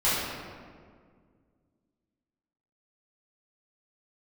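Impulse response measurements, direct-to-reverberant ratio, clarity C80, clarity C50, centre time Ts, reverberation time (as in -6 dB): -13.0 dB, 0.5 dB, -2.0 dB, 0.115 s, 1.9 s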